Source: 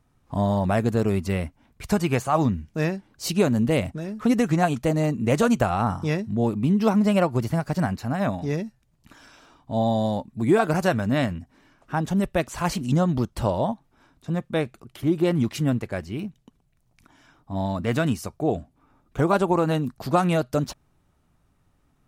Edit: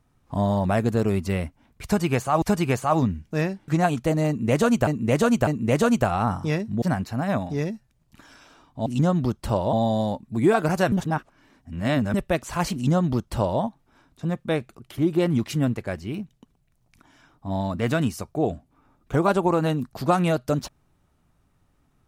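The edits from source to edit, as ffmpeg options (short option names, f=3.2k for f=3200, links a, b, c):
-filter_complex "[0:a]asplit=10[a][b][c][d][e][f][g][h][i][j];[a]atrim=end=2.422[k];[b]atrim=start=1.848:end=3.112[l];[c]atrim=start=4.468:end=5.662[m];[d]atrim=start=5.058:end=5.662[n];[e]atrim=start=5.058:end=6.412[o];[f]atrim=start=7.738:end=9.782[p];[g]atrim=start=12.788:end=13.662[q];[h]atrim=start=9.778:end=10.972[r];[i]atrim=start=10.968:end=12.192,asetpts=PTS-STARTPTS,areverse[s];[j]atrim=start=12.188[t];[k][l]acrossfade=d=0.004:c1=hsin:c2=hsin[u];[u][m]acrossfade=d=0.004:c1=hsin:c2=hsin[v];[v][n]acrossfade=d=0.004:c1=hsin:c2=hsin[w];[w][o]acrossfade=d=0.004:c1=hsin:c2=hsin[x];[x][p]acrossfade=d=0.004:c1=hsin:c2=hsin[y];[y][q]acrossfade=d=0.004:c1=hsin:c2=hsin[z];[z][r]acrossfade=d=0.004:c1=hsin:c2=hsin[aa];[aa][s]acrossfade=d=0.004:c1=hsin:c2=hsin[ab];[ab][t]acrossfade=d=0.004:c1=hsin:c2=hsin"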